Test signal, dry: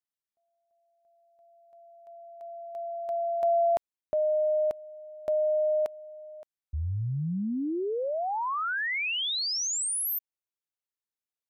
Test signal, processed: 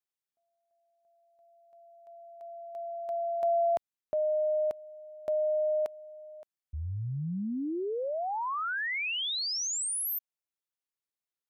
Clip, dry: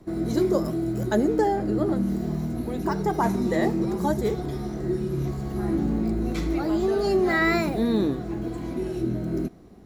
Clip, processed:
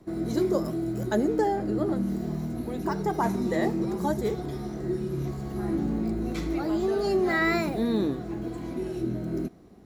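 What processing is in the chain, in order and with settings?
bass shelf 68 Hz -5.5 dB; trim -2.5 dB

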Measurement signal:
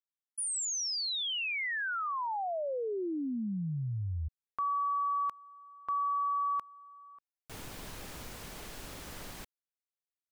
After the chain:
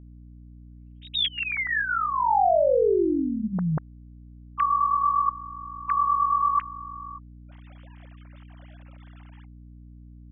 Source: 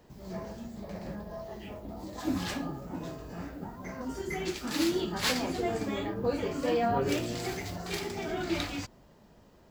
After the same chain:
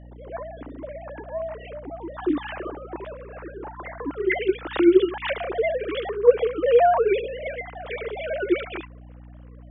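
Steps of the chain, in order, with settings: formants replaced by sine waves; hum 60 Hz, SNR 19 dB; trim +9 dB

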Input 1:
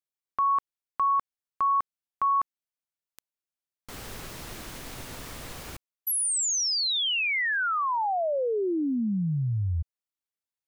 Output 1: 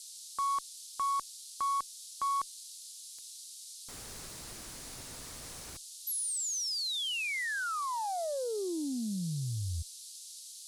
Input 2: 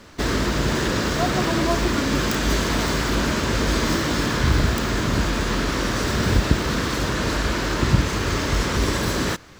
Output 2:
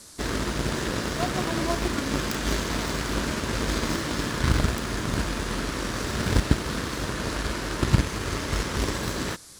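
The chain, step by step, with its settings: band noise 3.8–11 kHz -40 dBFS; Chebyshev shaper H 7 -22 dB, 8 -42 dB, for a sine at -2 dBFS; trim -1.5 dB

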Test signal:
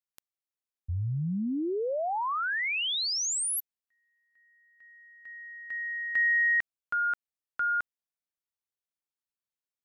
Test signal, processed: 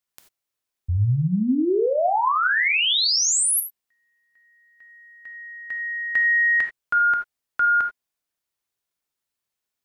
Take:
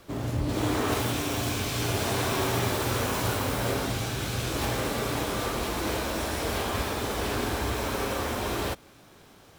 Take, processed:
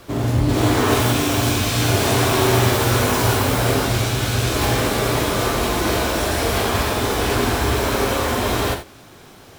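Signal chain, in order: gated-style reverb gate 110 ms flat, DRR 5.5 dB; trim +8.5 dB

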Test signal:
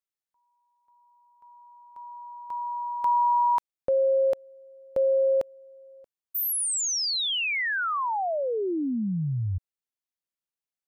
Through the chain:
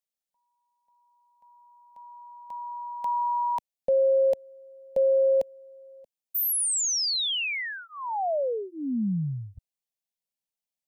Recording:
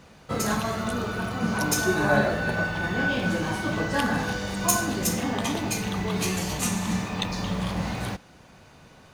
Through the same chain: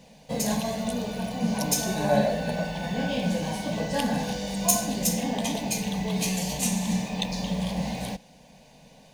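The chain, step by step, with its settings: static phaser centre 350 Hz, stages 6; trim +1.5 dB

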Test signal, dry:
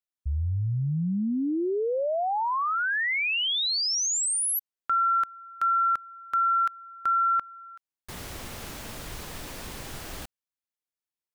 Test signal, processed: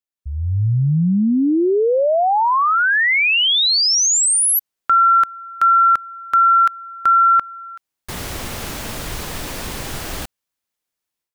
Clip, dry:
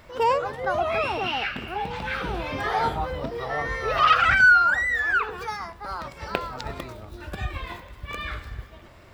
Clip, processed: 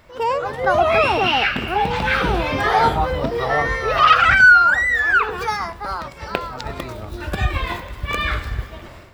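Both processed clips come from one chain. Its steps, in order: level rider gain up to 12 dB; trim -1 dB

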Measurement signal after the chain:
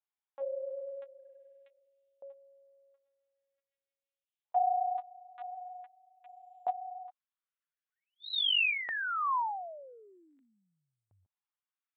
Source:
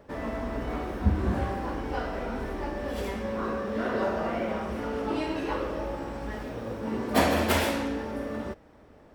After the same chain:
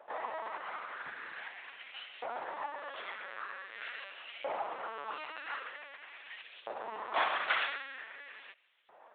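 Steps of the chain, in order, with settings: LPC vocoder at 8 kHz pitch kept; dynamic bell 1.3 kHz, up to -4 dB, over -39 dBFS, Q 0.77; LFO high-pass saw up 0.45 Hz 750–3100 Hz; trim -2.5 dB

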